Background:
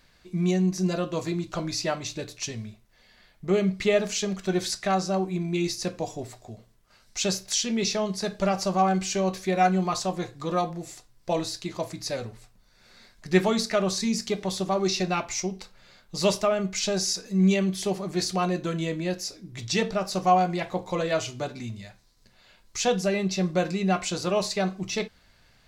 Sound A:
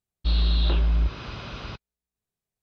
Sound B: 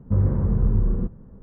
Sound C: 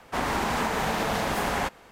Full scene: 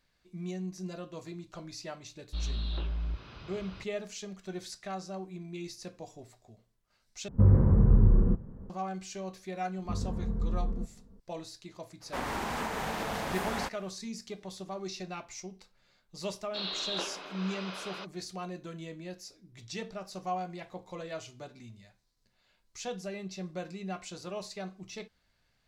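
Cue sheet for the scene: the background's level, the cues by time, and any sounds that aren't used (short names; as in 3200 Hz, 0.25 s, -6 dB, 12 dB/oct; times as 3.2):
background -14 dB
2.08 add A -12 dB
7.28 replace with B -0.5 dB
9.78 add B -12.5 dB + comb 4.4 ms, depth 58%
12 add C -7.5 dB, fades 0.02 s
16.29 add A -2 dB + HPF 390 Hz 24 dB/oct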